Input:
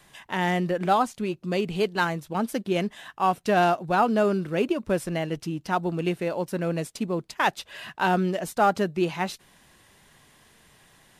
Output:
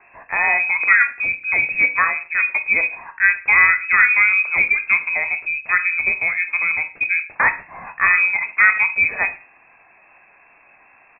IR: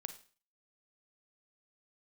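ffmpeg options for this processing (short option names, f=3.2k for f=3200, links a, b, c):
-filter_complex "[0:a]asplit=2[a][b];[b]adelay=21,volume=-11dB[c];[a][c]amix=inputs=2:normalize=0,asplit=2[d][e];[1:a]atrim=start_sample=2205,afade=t=out:st=0.28:d=0.01,atrim=end_sample=12789[f];[e][f]afir=irnorm=-1:irlink=0,volume=10dB[g];[d][g]amix=inputs=2:normalize=0,lowpass=f=2.3k:t=q:w=0.5098,lowpass=f=2.3k:t=q:w=0.6013,lowpass=f=2.3k:t=q:w=0.9,lowpass=f=2.3k:t=q:w=2.563,afreqshift=-2700,volume=-3dB"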